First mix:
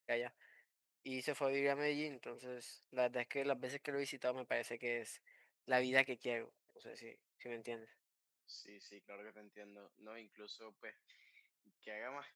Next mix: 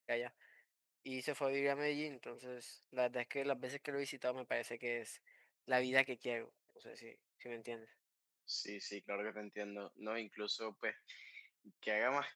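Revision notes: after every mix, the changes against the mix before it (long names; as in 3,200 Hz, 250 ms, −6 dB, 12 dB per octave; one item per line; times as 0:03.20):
second voice +11.5 dB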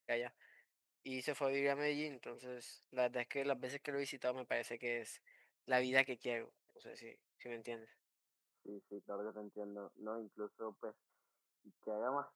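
second voice: add Chebyshev low-pass with heavy ripple 1,400 Hz, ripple 3 dB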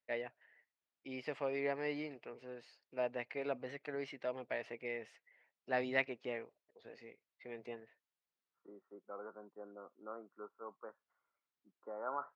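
first voice: add high-frequency loss of the air 220 metres
second voice: add spectral tilt +4 dB per octave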